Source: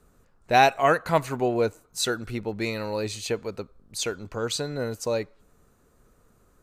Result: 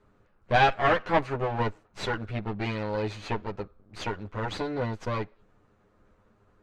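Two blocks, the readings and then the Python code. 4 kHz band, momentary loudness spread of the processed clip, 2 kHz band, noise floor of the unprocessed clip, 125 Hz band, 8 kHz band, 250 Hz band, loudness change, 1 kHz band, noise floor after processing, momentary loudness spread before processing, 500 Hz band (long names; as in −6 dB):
−5.5 dB, 14 LU, −1.0 dB, −62 dBFS, +1.5 dB, −17.5 dB, −2.5 dB, −3.0 dB, −2.5 dB, −65 dBFS, 12 LU, −4.0 dB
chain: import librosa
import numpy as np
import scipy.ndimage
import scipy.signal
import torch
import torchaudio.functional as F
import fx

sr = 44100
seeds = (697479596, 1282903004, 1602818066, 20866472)

y = fx.lower_of_two(x, sr, delay_ms=9.7)
y = scipy.signal.sosfilt(scipy.signal.butter(2, 3000.0, 'lowpass', fs=sr, output='sos'), y)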